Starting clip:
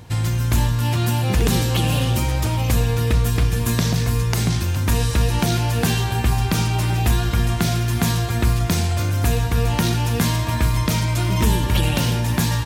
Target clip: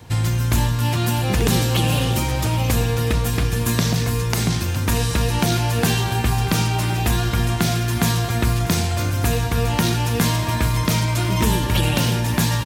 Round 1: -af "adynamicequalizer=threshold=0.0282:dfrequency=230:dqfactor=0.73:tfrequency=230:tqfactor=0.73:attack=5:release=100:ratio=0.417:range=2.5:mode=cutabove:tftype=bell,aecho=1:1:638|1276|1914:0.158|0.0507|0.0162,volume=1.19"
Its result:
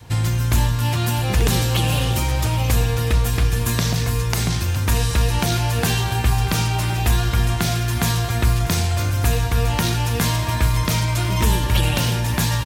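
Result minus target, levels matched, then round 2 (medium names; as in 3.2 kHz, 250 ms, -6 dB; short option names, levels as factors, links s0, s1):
250 Hz band -3.5 dB
-af "adynamicequalizer=threshold=0.0282:dfrequency=58:dqfactor=0.73:tfrequency=58:tqfactor=0.73:attack=5:release=100:ratio=0.417:range=2.5:mode=cutabove:tftype=bell,aecho=1:1:638|1276|1914:0.158|0.0507|0.0162,volume=1.19"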